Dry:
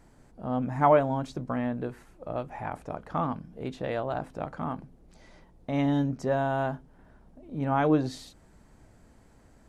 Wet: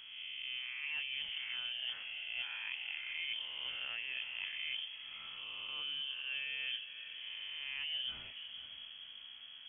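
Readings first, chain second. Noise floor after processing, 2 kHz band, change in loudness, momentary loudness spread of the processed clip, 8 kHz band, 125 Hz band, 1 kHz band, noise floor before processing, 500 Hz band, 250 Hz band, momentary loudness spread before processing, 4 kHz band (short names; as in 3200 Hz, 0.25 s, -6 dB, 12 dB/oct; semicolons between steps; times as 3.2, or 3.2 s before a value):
-52 dBFS, +0.5 dB, -10.5 dB, 8 LU, n/a, under -35 dB, -29.5 dB, -58 dBFS, -38.5 dB, under -40 dB, 15 LU, +14.0 dB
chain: spectral swells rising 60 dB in 0.96 s; reverse; compressor 16:1, threshold -38 dBFS, peak gain reduction 24.5 dB; reverse; diffused feedback echo 0.507 s, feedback 40%, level -11 dB; inverted band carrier 3300 Hz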